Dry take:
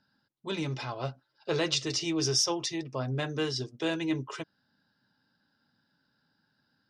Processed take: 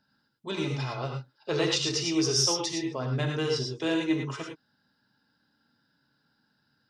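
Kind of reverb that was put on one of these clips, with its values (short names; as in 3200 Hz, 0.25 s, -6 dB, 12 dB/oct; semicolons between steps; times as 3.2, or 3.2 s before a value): non-linear reverb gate 0.13 s rising, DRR 2 dB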